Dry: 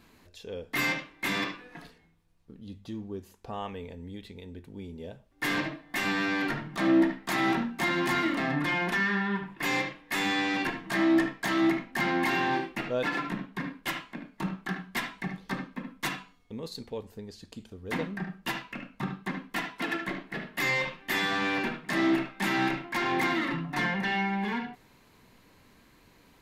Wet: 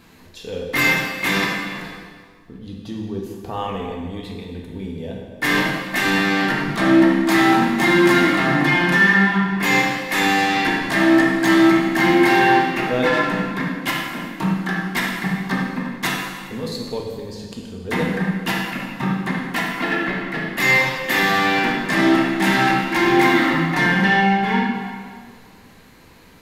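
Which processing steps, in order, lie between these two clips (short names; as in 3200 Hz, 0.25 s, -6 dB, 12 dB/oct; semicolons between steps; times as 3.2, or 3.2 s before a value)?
19.61–20.18 air absorption 120 m; plate-style reverb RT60 1.8 s, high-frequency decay 0.85×, DRR -0.5 dB; gain +8 dB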